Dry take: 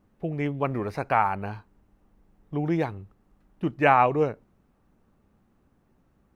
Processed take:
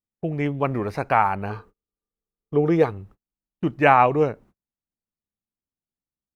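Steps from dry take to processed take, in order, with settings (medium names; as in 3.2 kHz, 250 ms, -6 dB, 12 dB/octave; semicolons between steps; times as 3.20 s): gate -51 dBFS, range -37 dB; 1.49–2.89 s: small resonant body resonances 450/1200 Hz, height 16 dB -> 12 dB; trim +3.5 dB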